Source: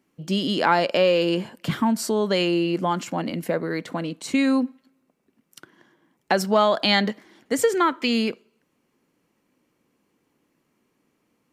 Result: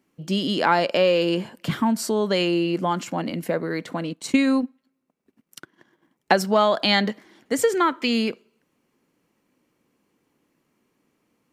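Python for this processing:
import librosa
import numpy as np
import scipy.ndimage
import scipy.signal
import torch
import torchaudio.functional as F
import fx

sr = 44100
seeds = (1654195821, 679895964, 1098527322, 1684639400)

y = fx.transient(x, sr, attack_db=4, sustain_db=-9, at=(4.1, 6.36))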